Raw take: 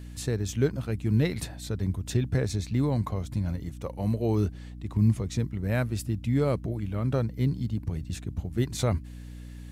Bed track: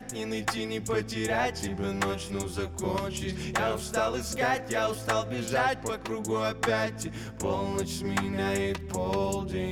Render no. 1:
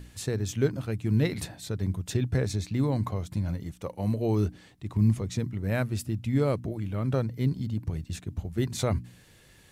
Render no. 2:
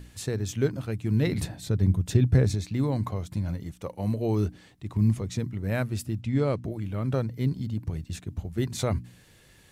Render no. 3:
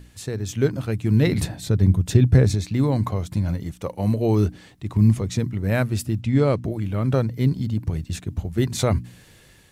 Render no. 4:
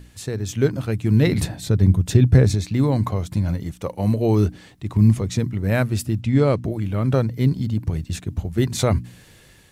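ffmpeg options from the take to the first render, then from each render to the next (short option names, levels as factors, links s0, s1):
-af "bandreject=f=60:t=h:w=4,bandreject=f=120:t=h:w=4,bandreject=f=180:t=h:w=4,bandreject=f=240:t=h:w=4,bandreject=f=300:t=h:w=4"
-filter_complex "[0:a]asettb=1/sr,asplit=3[s0][s1][s2];[s0]atrim=end=1.274[s3];[s1]atrim=start=1.27:end=2.55,asetpts=PTS-STARTPTS,afade=t=in:d=0.004:c=qsin,afade=t=out:st=1.276:d=0.004:c=qsin,lowshelf=f=340:g=8[s4];[s2]atrim=start=2.546[s5];[s3][s4]acrossfade=d=0.004:c1=hsin:c2=qsin[s6];[s6][s5]acrossfade=d=0.004:c1=qsin:c2=hsin,asettb=1/sr,asplit=3[s7][s8][s9];[s7]atrim=end=6.214[s10];[s8]atrim=start=6.21:end=6.64,asetpts=PTS-STARTPTS,afade=t=in:d=0.004:c=qsin,afade=t=out:st=0.426:d=0.004:c=qsin,lowpass=7200[s11];[s9]atrim=start=6.636[s12];[s10][s11]acrossfade=d=0.004:c1=hsin:c2=qsin[s13];[s13][s12]acrossfade=d=0.004:c1=qsin:c2=hsin"
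-af "dynaudnorm=f=220:g=5:m=2.11"
-af "volume=1.19,alimiter=limit=0.708:level=0:latency=1"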